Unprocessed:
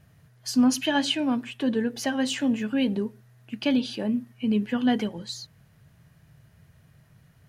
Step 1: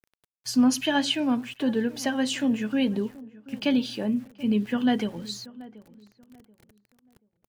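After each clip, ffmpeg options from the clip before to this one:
ffmpeg -i in.wav -filter_complex "[0:a]aeval=exprs='val(0)*gte(abs(val(0)),0.00398)':channel_layout=same,asplit=2[link_01][link_02];[link_02]adelay=732,lowpass=frequency=1200:poles=1,volume=-19dB,asplit=2[link_03][link_04];[link_04]adelay=732,lowpass=frequency=1200:poles=1,volume=0.3,asplit=2[link_05][link_06];[link_06]adelay=732,lowpass=frequency=1200:poles=1,volume=0.3[link_07];[link_01][link_03][link_05][link_07]amix=inputs=4:normalize=0" out.wav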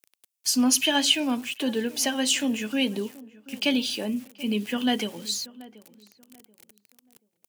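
ffmpeg -i in.wav -af "highpass=230,aexciter=amount=1.4:drive=9.2:freq=2300" out.wav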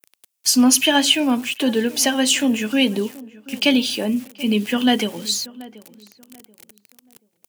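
ffmpeg -i in.wav -af "adynamicequalizer=threshold=0.0126:dfrequency=4800:dqfactor=0.8:tfrequency=4800:tqfactor=0.8:attack=5:release=100:ratio=0.375:range=3:mode=cutabove:tftype=bell,volume=7.5dB" out.wav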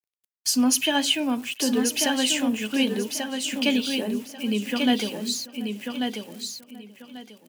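ffmpeg -i in.wav -filter_complex "[0:a]agate=range=-33dB:threshold=-43dB:ratio=3:detection=peak,asplit=2[link_01][link_02];[link_02]aecho=0:1:1140|2280|3420:0.562|0.118|0.0248[link_03];[link_01][link_03]amix=inputs=2:normalize=0,volume=-6.5dB" out.wav

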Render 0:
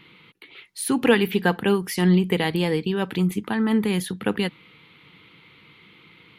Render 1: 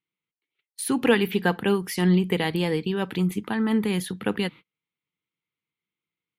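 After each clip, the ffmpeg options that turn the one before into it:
ffmpeg -i in.wav -af "agate=range=-38dB:threshold=-38dB:ratio=16:detection=peak,volume=-2dB" out.wav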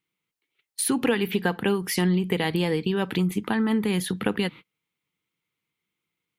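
ffmpeg -i in.wav -af "acompressor=threshold=-29dB:ratio=3,volume=6.5dB" out.wav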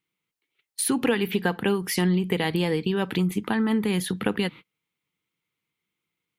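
ffmpeg -i in.wav -af anull out.wav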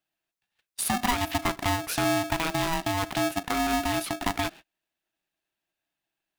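ffmpeg -i in.wav -af "aeval=exprs='val(0)*sgn(sin(2*PI*490*n/s))':channel_layout=same,volume=-3dB" out.wav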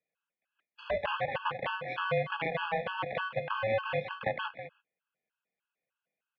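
ffmpeg -i in.wav -af "highpass=frequency=370:width_type=q:width=0.5412,highpass=frequency=370:width_type=q:width=1.307,lowpass=frequency=3100:width_type=q:width=0.5176,lowpass=frequency=3100:width_type=q:width=0.7071,lowpass=frequency=3100:width_type=q:width=1.932,afreqshift=-160,aecho=1:1:196:0.266,afftfilt=real='re*gt(sin(2*PI*3.3*pts/sr)*(1-2*mod(floor(b*sr/1024/840),2)),0)':imag='im*gt(sin(2*PI*3.3*pts/sr)*(1-2*mod(floor(b*sr/1024/840),2)),0)':win_size=1024:overlap=0.75" out.wav

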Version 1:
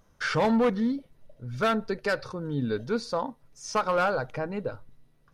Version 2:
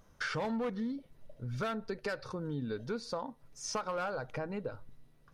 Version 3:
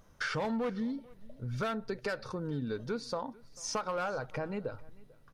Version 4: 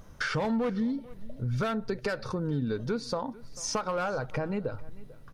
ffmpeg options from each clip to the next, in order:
ffmpeg -i in.wav -af "acompressor=threshold=-35dB:ratio=4" out.wav
ffmpeg -i in.wav -af "aecho=1:1:443:0.0668,volume=1.5dB" out.wav
ffmpeg -i in.wav -filter_complex "[0:a]lowshelf=frequency=280:gain=5,asplit=2[link_01][link_02];[link_02]acompressor=threshold=-41dB:ratio=6,volume=2dB[link_03];[link_01][link_03]amix=inputs=2:normalize=0" out.wav

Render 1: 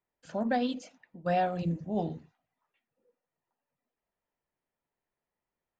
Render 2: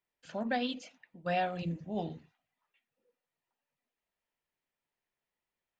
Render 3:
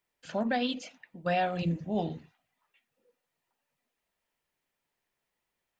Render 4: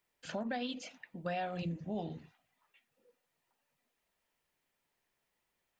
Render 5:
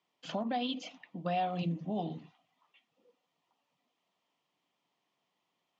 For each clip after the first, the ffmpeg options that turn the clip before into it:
ffmpeg -i in.wav -af "equalizer=frequency=2800:width_type=o:width=1.7:gain=9,volume=-5dB" out.wav
ffmpeg -i in.wav -af "alimiter=level_in=1.5dB:limit=-24dB:level=0:latency=1:release=247,volume=-1.5dB,volume=6dB" out.wav
ffmpeg -i in.wav -af "acompressor=threshold=-40dB:ratio=2.5,volume=1dB" out.wav
ffmpeg -i in.wav -af "highpass=frequency=120:width=0.5412,highpass=frequency=120:width=1.3066,equalizer=frequency=180:width_type=q:width=4:gain=5,equalizer=frequency=290:width_type=q:width=4:gain=7,equalizer=frequency=730:width_type=q:width=4:gain=6,equalizer=frequency=1100:width_type=q:width=4:gain=8,equalizer=frequency=1600:width_type=q:width=4:gain=-8,equalizer=frequency=3200:width_type=q:width=4:gain=7,lowpass=frequency=6600:width=0.5412,lowpass=frequency=6600:width=1.3066" out.wav

